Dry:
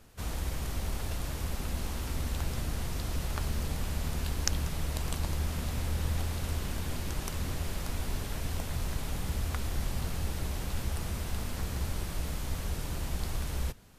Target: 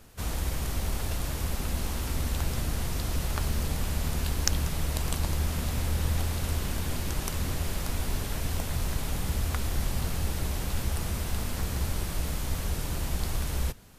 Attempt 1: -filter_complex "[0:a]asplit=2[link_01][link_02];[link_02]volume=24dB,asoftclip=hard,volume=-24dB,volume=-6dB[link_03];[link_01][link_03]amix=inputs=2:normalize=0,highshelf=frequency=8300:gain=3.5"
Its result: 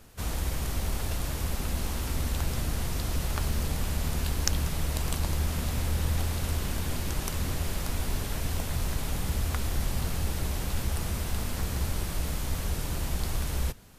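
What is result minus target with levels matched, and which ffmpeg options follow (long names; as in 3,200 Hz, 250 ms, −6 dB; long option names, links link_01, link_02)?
gain into a clipping stage and back: distortion +8 dB
-filter_complex "[0:a]asplit=2[link_01][link_02];[link_02]volume=14dB,asoftclip=hard,volume=-14dB,volume=-6dB[link_03];[link_01][link_03]amix=inputs=2:normalize=0,highshelf=frequency=8300:gain=3.5"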